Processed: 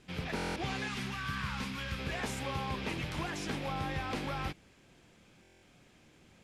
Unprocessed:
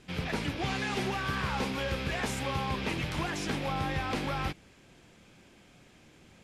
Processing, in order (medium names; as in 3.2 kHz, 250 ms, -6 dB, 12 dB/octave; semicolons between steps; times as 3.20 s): 0.88–1.99 s: high-order bell 510 Hz -11 dB; buffer glitch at 0.35/5.42 s, samples 1024, times 8; trim -4 dB